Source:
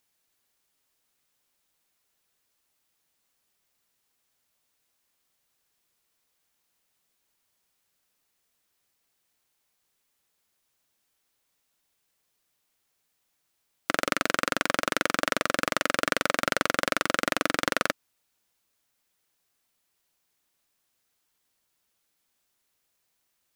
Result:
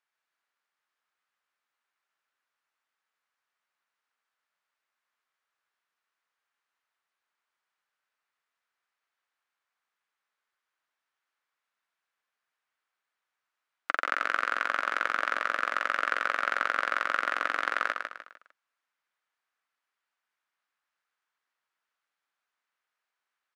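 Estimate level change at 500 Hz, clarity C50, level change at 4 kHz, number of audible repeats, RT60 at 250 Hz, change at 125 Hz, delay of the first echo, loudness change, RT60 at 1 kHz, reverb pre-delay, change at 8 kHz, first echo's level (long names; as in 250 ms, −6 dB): −9.5 dB, no reverb audible, −9.5 dB, 4, no reverb audible, below −20 dB, 151 ms, −2.5 dB, no reverb audible, no reverb audible, −17.5 dB, −5.5 dB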